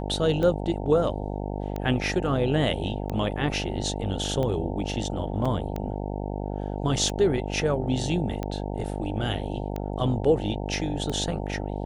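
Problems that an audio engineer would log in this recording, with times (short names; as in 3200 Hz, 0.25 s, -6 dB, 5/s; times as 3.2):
buzz 50 Hz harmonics 18 -31 dBFS
tick 45 rpm -18 dBFS
5.45 gap 4.8 ms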